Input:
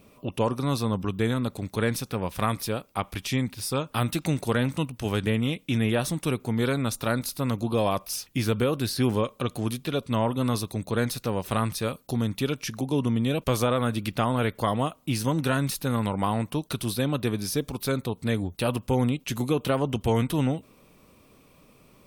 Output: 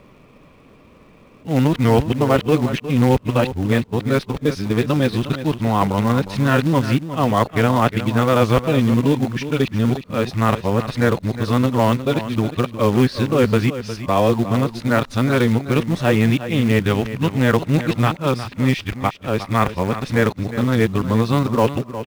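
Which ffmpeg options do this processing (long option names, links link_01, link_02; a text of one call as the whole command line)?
ffmpeg -i in.wav -filter_complex "[0:a]areverse,lowpass=2900,equalizer=frequency=1900:width_type=o:width=0.28:gain=2.5,asplit=2[link_01][link_02];[link_02]acrusher=bits=2:mode=log:mix=0:aa=0.000001,volume=-6.5dB[link_03];[link_01][link_03]amix=inputs=2:normalize=0,aecho=1:1:359:0.251,volume=5dB" out.wav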